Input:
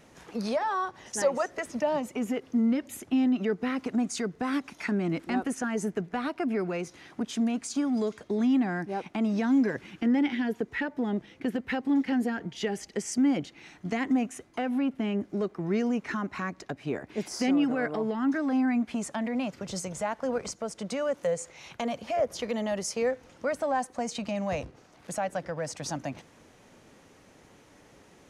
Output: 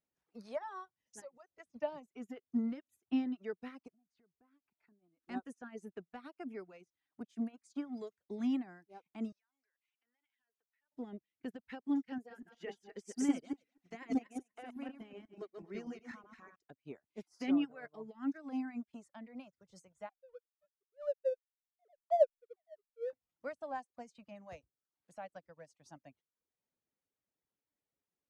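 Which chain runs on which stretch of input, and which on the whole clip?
0:01.20–0:01.60: downward compressor 2 to 1, threshold −37 dBFS + low-shelf EQ 410 Hz +2.5 dB
0:03.88–0:05.22: drawn EQ curve 770 Hz 0 dB, 4,400 Hz −7 dB, 7,000 Hz −22 dB + downward compressor, threshold −37 dBFS
0:09.32–0:10.92: high-pass filter 1,200 Hz + downward compressor, threshold −45 dBFS
0:12.18–0:16.56: feedback delay that plays each chunk backwards 123 ms, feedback 49%, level −1 dB + parametric band 140 Hz −8.5 dB 1.2 octaves
0:17.38–0:17.85: low-shelf EQ 140 Hz −5.5 dB + comb filter 7.1 ms, depth 33%
0:20.09–0:23.13: three sine waves on the formant tracks + low-pass filter 1,300 Hz 24 dB per octave + slack as between gear wheels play −42 dBFS
whole clip: reverb reduction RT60 0.77 s; expander for the loud parts 2.5 to 1, over −44 dBFS; level −1.5 dB

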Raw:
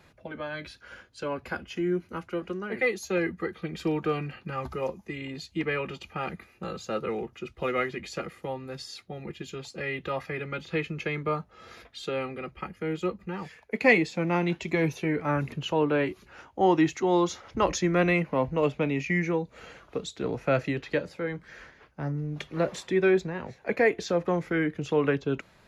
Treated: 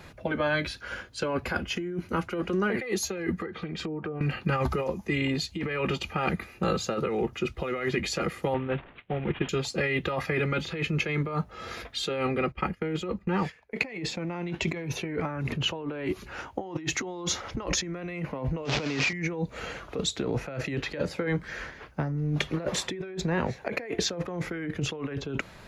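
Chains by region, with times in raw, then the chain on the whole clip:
0:03.37–0:04.21: treble cut that deepens with the level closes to 590 Hz, closed at −22.5 dBFS + high-pass filter 82 Hz + downward compressor 12 to 1, threshold −40 dBFS
0:08.54–0:09.49: variable-slope delta modulation 16 kbit/s + multiband upward and downward expander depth 100%
0:12.27–0:15.93: noise gate −48 dBFS, range −14 dB + high-shelf EQ 6,100 Hz −6.5 dB
0:18.65–0:19.13: linear delta modulator 32 kbit/s, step −27.5 dBFS + high-pass filter 220 Hz 6 dB per octave
whole clip: low-shelf EQ 75 Hz +4.5 dB; compressor whose output falls as the input rises −34 dBFS, ratio −1; level +4 dB

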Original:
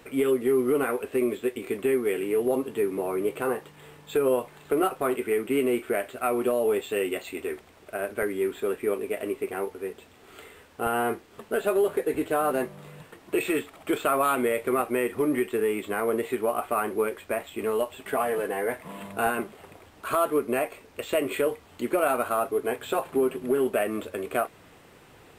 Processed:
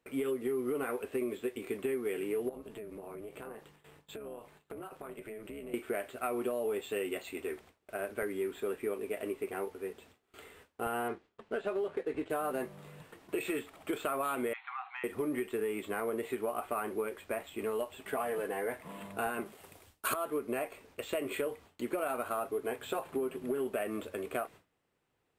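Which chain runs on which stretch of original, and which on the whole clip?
0:02.49–0:05.74: amplitude modulation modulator 210 Hz, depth 50% + downward compressor, threshold −35 dBFS
0:11.08–0:12.30: mu-law and A-law mismatch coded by A + low-pass filter 4,700 Hz
0:14.53–0:15.04: linear-phase brick-wall band-pass 720–4,300 Hz + downward compressor, threshold −30 dBFS
0:19.45–0:20.14: high-shelf EQ 4,600 Hz +10.5 dB + multiband upward and downward expander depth 100%
whole clip: noise gate with hold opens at −40 dBFS; downward compressor, threshold −24 dBFS; level −6 dB

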